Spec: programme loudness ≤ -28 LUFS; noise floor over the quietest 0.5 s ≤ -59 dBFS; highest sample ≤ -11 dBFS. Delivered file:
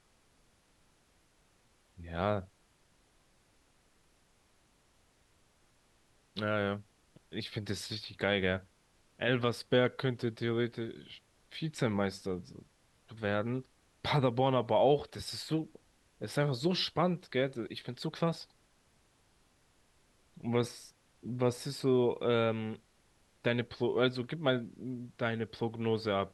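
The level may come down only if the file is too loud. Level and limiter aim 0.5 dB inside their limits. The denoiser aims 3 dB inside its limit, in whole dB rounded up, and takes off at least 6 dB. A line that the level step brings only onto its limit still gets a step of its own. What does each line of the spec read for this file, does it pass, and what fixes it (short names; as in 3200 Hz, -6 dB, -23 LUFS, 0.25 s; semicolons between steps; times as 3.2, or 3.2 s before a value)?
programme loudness -33.5 LUFS: OK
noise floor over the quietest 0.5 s -69 dBFS: OK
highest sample -15.0 dBFS: OK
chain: none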